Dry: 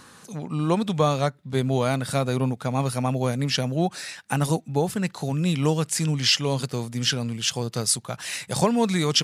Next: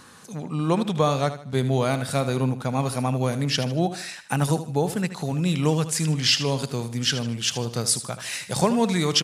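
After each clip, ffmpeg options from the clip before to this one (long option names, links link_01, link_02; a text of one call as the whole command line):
ffmpeg -i in.wav -af "aecho=1:1:77|154|231|308:0.251|0.0904|0.0326|0.0117" out.wav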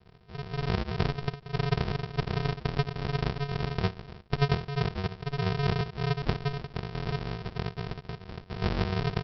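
ffmpeg -i in.wav -af "aresample=11025,acrusher=samples=39:mix=1:aa=0.000001,aresample=44100,lowshelf=frequency=64:gain=-12,volume=-3dB" out.wav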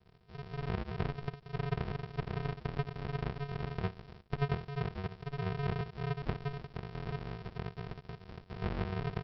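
ffmpeg -i in.wav -filter_complex "[0:a]acrossover=split=3100[link_01][link_02];[link_02]acompressor=threshold=-51dB:ratio=4:attack=1:release=60[link_03];[link_01][link_03]amix=inputs=2:normalize=0,volume=-7dB" out.wav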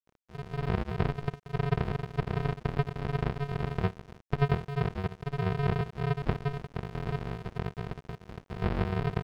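ffmpeg -i in.wav -af "highshelf=frequency=3600:gain=-6,aeval=exprs='sgn(val(0))*max(abs(val(0))-0.00178,0)':channel_layout=same,volume=7dB" out.wav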